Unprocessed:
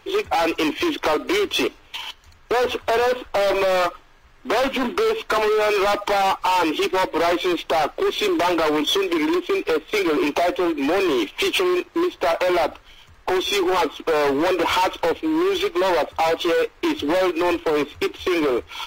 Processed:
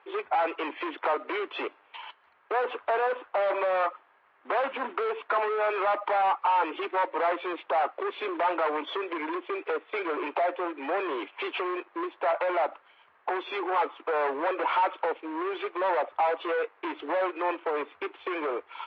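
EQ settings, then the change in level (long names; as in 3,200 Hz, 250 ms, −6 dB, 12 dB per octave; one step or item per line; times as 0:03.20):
band-pass filter 730–3,300 Hz
high-frequency loss of the air 340 metres
high-shelf EQ 2,400 Hz −10 dB
0.0 dB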